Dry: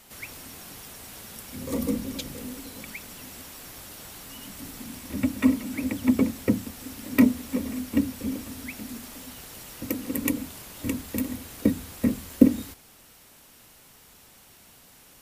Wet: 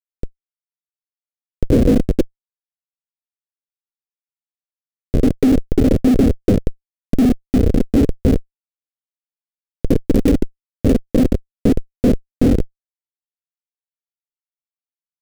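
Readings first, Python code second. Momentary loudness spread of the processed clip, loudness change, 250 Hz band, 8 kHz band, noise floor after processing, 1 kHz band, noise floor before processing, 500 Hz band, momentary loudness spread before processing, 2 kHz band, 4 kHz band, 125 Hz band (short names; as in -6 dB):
8 LU, +10.5 dB, +8.5 dB, n/a, under -85 dBFS, +7.0 dB, -54 dBFS, +14.5 dB, 19 LU, 0.0 dB, +2.0 dB, +16.0 dB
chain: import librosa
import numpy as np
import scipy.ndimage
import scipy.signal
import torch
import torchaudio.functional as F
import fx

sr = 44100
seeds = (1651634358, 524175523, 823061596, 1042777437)

y = fx.spec_box(x, sr, start_s=6.15, length_s=2.73, low_hz=480.0, high_hz=2800.0, gain_db=-8)
y = fx.schmitt(y, sr, flips_db=-25.5)
y = fx.low_shelf_res(y, sr, hz=660.0, db=11.0, q=3.0)
y = F.gain(torch.from_numpy(y), 6.0).numpy()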